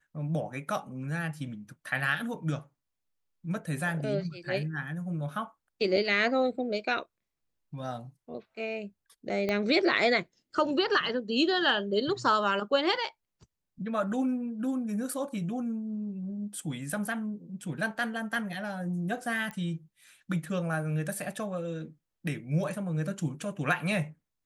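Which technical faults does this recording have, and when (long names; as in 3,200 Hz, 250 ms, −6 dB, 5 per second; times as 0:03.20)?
0:09.49: click −17 dBFS
0:19.51: click −25 dBFS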